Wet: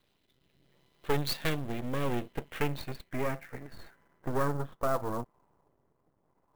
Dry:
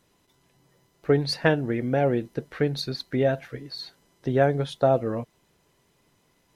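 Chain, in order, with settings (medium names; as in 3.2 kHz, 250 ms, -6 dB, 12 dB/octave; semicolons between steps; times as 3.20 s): saturation -16.5 dBFS, distortion -14 dB; rotary cabinet horn 0.7 Hz; half-wave rectifier; low-pass sweep 3.7 kHz -> 1 kHz, 1.85–5.32 s; sampling jitter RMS 0.021 ms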